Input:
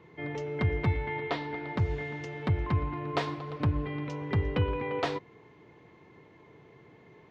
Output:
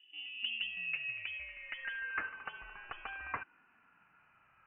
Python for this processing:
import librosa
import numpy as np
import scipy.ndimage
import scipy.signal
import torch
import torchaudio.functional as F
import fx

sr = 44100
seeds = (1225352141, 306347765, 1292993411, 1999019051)

y = fx.speed_glide(x, sr, from_pct=136, to_pct=177)
y = fx.filter_sweep_bandpass(y, sr, from_hz=280.0, to_hz=2100.0, start_s=0.13, end_s=2.39, q=4.1)
y = fx.freq_invert(y, sr, carrier_hz=3200)
y = y * librosa.db_to_amplitude(2.5)